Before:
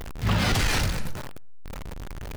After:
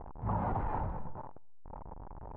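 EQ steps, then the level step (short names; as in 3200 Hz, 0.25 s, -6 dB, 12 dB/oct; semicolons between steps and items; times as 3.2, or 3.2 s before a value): ladder low-pass 1000 Hz, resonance 65%; 0.0 dB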